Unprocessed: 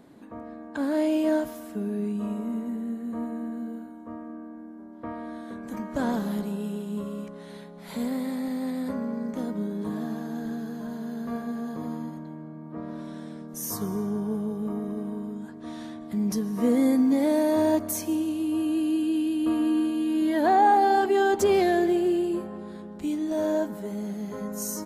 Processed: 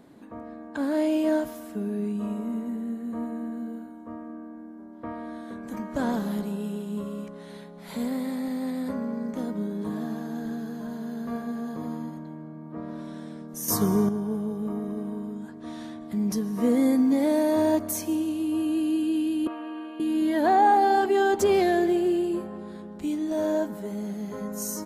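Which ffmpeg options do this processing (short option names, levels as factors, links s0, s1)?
-filter_complex "[0:a]asettb=1/sr,asplit=3[s0][s1][s2];[s0]atrim=end=13.684[s3];[s1]atrim=start=13.68:end=14.09,asetpts=PTS-STARTPTS,afade=t=in:d=0.004:c=qsin,afade=t=out:st=0.406:d=0.004:c=qsin,acontrast=90[s4];[s2]atrim=start=14.086[s5];[s3][s4]acrossfade=d=0.004:c1=hsin:c2=qsin[s6];[s6][s5]acrossfade=d=0.004:c1=qsin:c2=hsin,asettb=1/sr,asplit=3[s7][s8][s9];[s7]atrim=end=19.474[s10];[s8]atrim=start=19.47:end=20,asetpts=PTS-STARTPTS,afade=t=in:d=0.004:c=qsin,afade=t=out:st=0.526:d=0.004:c=qsin,acrossover=split=470 2700:gain=0.0708 1 0.0631[s11][s12][s13];[s11][s12][s13]amix=inputs=3:normalize=0[s14];[s9]atrim=start=19.996[s15];[s10][s14]acrossfade=d=0.004:c1=hsin:c2=qsin[s16];[s16][s15]acrossfade=d=0.004:c1=qsin:c2=hsin"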